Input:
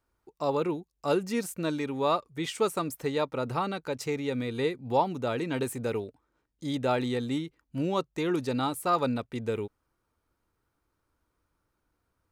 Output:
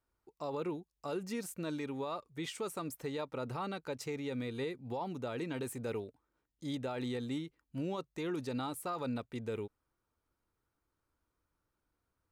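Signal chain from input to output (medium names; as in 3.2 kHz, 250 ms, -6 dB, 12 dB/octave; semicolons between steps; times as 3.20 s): peak limiter -23 dBFS, peak gain reduction 11 dB; trim -6.5 dB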